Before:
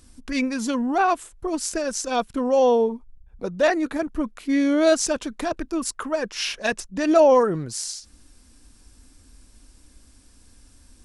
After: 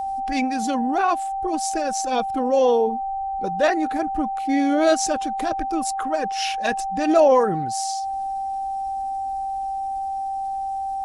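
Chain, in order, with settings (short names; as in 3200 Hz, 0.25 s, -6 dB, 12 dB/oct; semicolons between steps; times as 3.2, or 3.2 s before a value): bin magnitudes rounded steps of 15 dB; whine 780 Hz -24 dBFS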